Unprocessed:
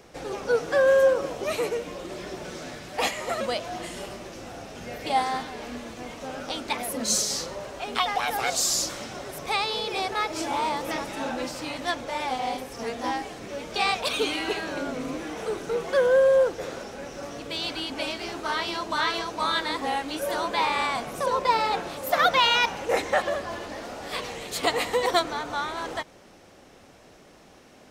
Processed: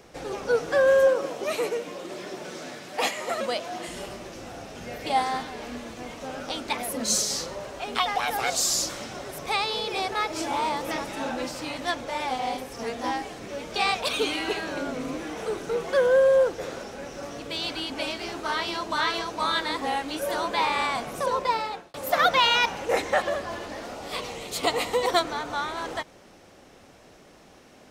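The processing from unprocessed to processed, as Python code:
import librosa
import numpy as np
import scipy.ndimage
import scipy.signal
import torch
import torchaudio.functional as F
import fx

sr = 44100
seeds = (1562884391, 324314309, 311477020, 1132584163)

y = fx.highpass(x, sr, hz=180.0, slope=12, at=(1.07, 3.88))
y = fx.peak_eq(y, sr, hz=1700.0, db=-8.0, octaves=0.27, at=(23.95, 25.09))
y = fx.edit(y, sr, fx.fade_out_span(start_s=21.1, length_s=0.84, curve='qsin'), tone=tone)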